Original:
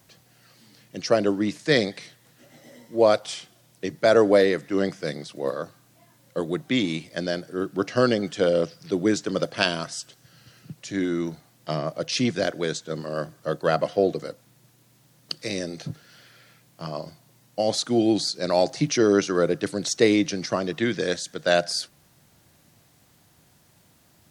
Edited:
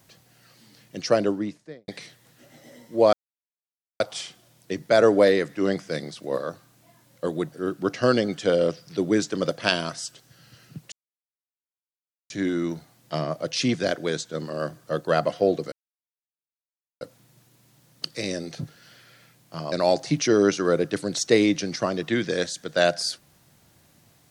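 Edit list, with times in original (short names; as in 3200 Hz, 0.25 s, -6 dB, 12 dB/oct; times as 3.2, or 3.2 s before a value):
1.11–1.88 studio fade out
3.13 insert silence 0.87 s
6.65–7.46 cut
10.86 insert silence 1.38 s
14.28 insert silence 1.29 s
16.99–18.42 cut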